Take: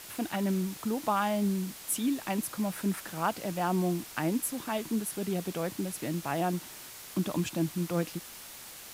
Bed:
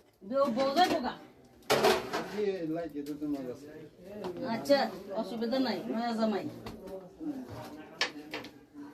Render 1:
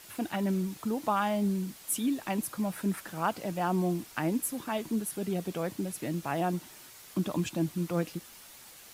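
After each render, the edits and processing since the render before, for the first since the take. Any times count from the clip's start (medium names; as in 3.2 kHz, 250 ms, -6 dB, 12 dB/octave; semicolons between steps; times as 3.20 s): noise reduction 6 dB, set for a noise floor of -47 dBFS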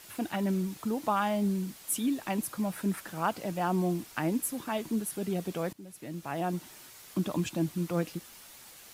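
5.73–6.67 s: fade in, from -18.5 dB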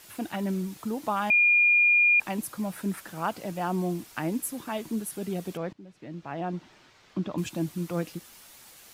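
1.30–2.20 s: bleep 2.42 kHz -17 dBFS; 5.57–7.38 s: distance through air 170 m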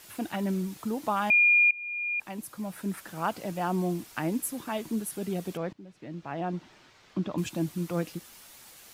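1.71–3.27 s: fade in, from -23.5 dB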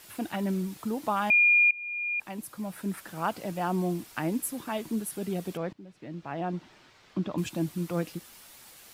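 peaking EQ 6.4 kHz -2 dB 0.33 oct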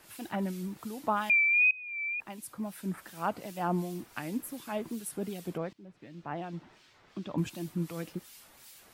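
harmonic tremolo 2.7 Hz, depth 70%, crossover 2 kHz; wow and flutter 69 cents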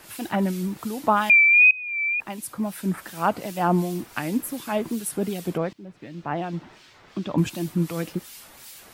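trim +9.5 dB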